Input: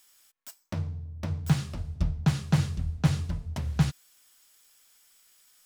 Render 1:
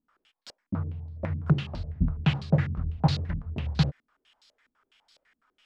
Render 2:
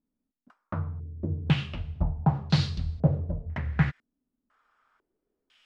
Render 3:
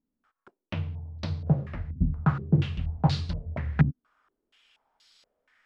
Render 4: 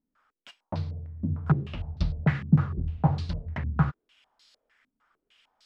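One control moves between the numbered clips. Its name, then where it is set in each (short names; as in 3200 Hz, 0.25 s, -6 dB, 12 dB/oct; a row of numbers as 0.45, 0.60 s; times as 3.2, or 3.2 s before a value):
stepped low-pass, rate: 12, 2, 4.2, 6.6 Hz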